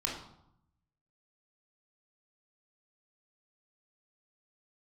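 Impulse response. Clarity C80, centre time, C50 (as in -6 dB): 7.5 dB, 39 ms, 4.0 dB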